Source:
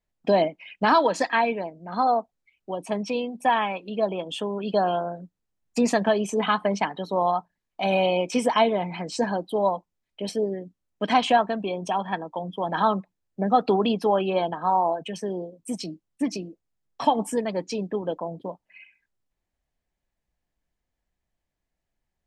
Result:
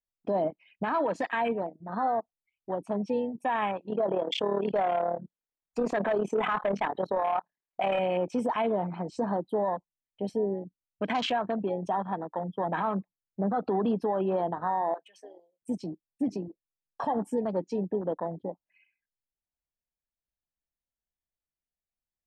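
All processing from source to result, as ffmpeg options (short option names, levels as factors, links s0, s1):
-filter_complex "[0:a]asettb=1/sr,asplit=3[s0][s1][s2];[s0]atrim=end=3.904[s3];[s1]atrim=start=3.9:end=7.99,asetpts=PTS-STARTPTS,afade=t=in:d=0.004:c=qsin,afade=t=out:st=4.086:d=0.004:c=qsin,equalizer=f=470:t=o:w=1:g=3,tremolo=f=37:d=0.75,asplit=2[s4][s5];[s5]highpass=f=720:p=1,volume=7.94,asoftclip=type=tanh:threshold=0.355[s6];[s4][s6]amix=inputs=2:normalize=0,lowpass=f=2600:p=1,volume=0.501[s7];[s2]atrim=start=7.986[s8];[s3][s7]acrossfade=d=0.004:c1=hsin:c2=qsin[s9];[s9][s8]acrossfade=d=0.004:c1=qsin:c2=hsin,asettb=1/sr,asplit=3[s10][s11][s12];[s10]atrim=end=14.944[s13];[s11]atrim=start=14.94:end=15.62,asetpts=PTS-STARTPTS,afade=t=in:d=0.004:c=qsin,afade=t=out:st=0.676:d=0.004:c=qsin,highpass=960,asoftclip=type=hard:threshold=0.0299[s14];[s12]atrim=start=15.616[s15];[s13][s14]acrossfade=d=0.004:c1=hsin:c2=qsin[s16];[s16][s15]acrossfade=d=0.004:c1=qsin:c2=hsin,afwtdn=0.0282,alimiter=limit=0.112:level=0:latency=1:release=33,volume=0.891"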